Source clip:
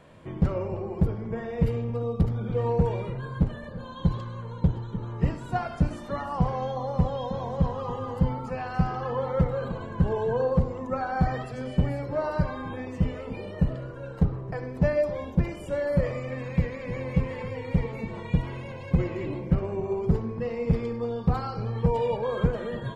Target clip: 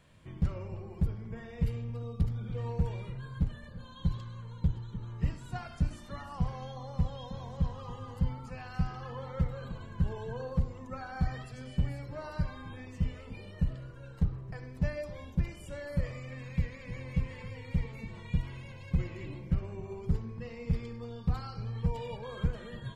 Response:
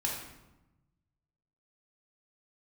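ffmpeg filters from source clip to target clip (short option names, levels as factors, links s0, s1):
-af "equalizer=f=530:w=0.35:g=-13.5,volume=0.841"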